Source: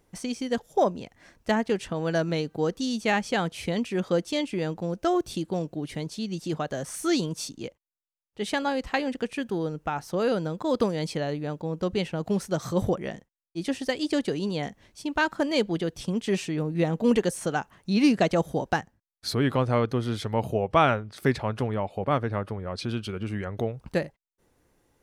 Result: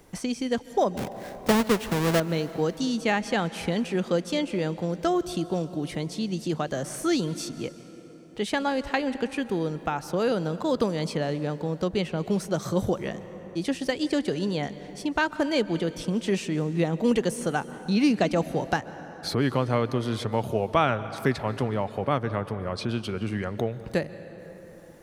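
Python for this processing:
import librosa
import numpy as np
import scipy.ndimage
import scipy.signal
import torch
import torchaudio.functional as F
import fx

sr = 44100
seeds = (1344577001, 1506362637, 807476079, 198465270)

y = fx.halfwave_hold(x, sr, at=(0.97, 2.2))
y = fx.rev_plate(y, sr, seeds[0], rt60_s=2.5, hf_ratio=0.6, predelay_ms=115, drr_db=15.5)
y = fx.band_squash(y, sr, depth_pct=40)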